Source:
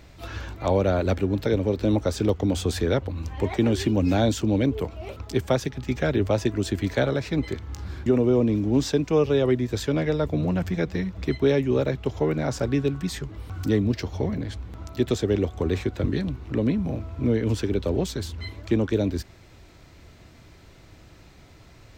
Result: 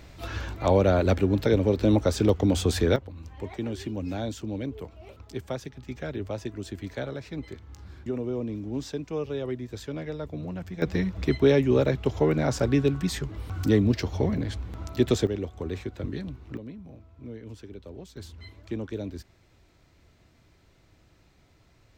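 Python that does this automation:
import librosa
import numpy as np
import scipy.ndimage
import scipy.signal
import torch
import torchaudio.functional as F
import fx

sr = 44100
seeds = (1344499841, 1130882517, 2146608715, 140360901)

y = fx.gain(x, sr, db=fx.steps((0.0, 1.0), (2.96, -10.5), (10.82, 1.0), (15.27, -8.0), (16.57, -18.0), (18.17, -10.5)))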